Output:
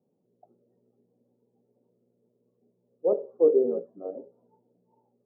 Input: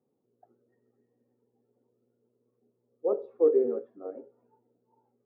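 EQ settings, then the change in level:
low-pass filter 1,000 Hz 24 dB per octave
parametric band 180 Hz +13 dB 0.27 octaves
parametric band 600 Hz +6.5 dB 0.23 octaves
+1.5 dB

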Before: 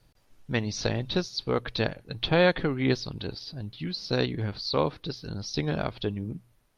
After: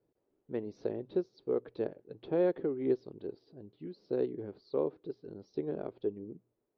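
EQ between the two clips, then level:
resonant band-pass 390 Hz, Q 3.1
0.0 dB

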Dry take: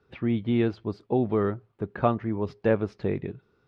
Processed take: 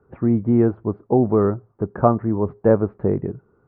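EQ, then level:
low-pass filter 1,300 Hz 24 dB per octave
+7.5 dB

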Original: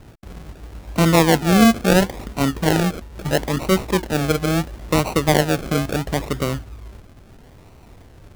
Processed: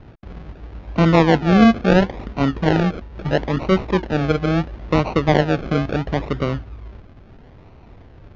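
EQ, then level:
linear-phase brick-wall low-pass 7,200 Hz
high-frequency loss of the air 230 metres
+1.5 dB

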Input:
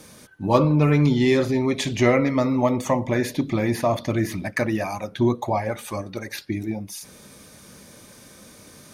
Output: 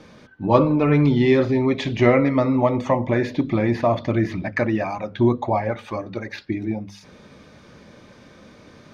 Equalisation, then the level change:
high-frequency loss of the air 220 metres
mains-hum notches 50/100/150/200/250 Hz
+3.0 dB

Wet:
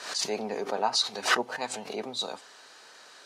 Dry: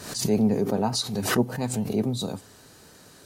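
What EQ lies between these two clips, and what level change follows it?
band-pass filter 780–5,200 Hz
+4.5 dB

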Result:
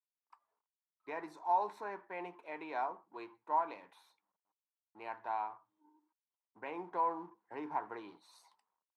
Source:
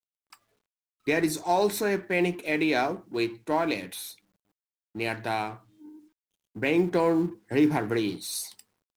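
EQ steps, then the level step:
resonant band-pass 960 Hz, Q 5.3
0.0 dB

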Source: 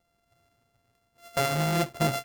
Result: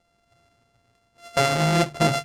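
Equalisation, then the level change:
high-frequency loss of the air 72 metres
high-shelf EQ 5,600 Hz +8.5 dB
mains-hum notches 50/100/150 Hz
+6.0 dB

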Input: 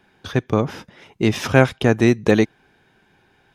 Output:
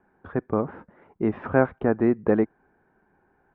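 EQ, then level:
low-pass filter 1,500 Hz 24 dB per octave
parametric band 120 Hz −8.5 dB 0.63 octaves
−4.5 dB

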